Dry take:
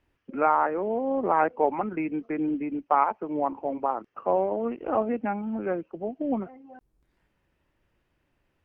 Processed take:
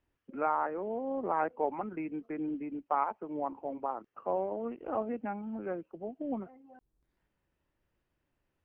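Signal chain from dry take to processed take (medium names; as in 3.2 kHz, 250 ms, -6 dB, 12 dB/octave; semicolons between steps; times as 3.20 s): peaking EQ 2.4 kHz -2.5 dB 0.77 oct; trim -8 dB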